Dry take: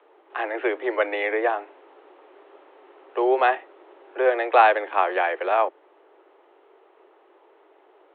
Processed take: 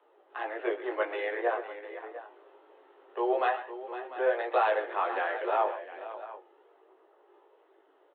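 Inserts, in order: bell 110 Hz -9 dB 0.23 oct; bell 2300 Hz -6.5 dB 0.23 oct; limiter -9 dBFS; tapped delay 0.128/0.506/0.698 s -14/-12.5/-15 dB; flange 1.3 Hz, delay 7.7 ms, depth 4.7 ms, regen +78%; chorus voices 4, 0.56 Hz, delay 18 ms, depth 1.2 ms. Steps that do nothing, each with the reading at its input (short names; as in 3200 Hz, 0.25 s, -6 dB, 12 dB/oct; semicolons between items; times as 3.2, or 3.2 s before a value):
bell 110 Hz: input band starts at 250 Hz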